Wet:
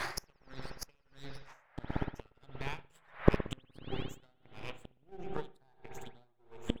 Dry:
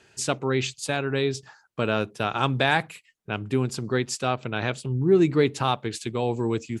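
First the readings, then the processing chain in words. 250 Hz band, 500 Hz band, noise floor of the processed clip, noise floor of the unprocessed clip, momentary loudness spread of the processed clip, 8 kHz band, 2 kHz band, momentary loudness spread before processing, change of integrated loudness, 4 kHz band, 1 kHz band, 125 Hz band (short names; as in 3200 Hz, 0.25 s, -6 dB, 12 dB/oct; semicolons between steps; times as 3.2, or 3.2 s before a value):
-14.5 dB, -16.5 dB, -70 dBFS, -64 dBFS, 22 LU, -18.0 dB, -17.0 dB, 9 LU, -14.5 dB, -16.5 dB, -17.5 dB, -14.0 dB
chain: moving spectral ripple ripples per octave 0.79, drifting +1.6 Hz, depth 24 dB; de-hum 54.04 Hz, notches 13; transient shaper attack +8 dB, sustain -7 dB; half-wave rectifier; band noise 550–2100 Hz -54 dBFS; flipped gate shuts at -20 dBFS, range -39 dB; spring tank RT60 3 s, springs 59 ms, chirp 45 ms, DRR 6 dB; dB-linear tremolo 1.5 Hz, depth 32 dB; gain +16.5 dB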